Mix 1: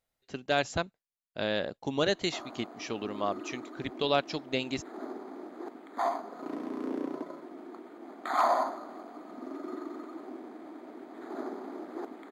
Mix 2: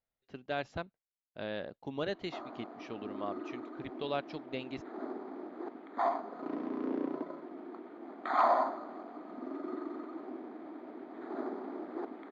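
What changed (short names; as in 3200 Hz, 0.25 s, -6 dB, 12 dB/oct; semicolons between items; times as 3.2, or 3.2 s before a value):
speech -7.0 dB; master: add air absorption 220 m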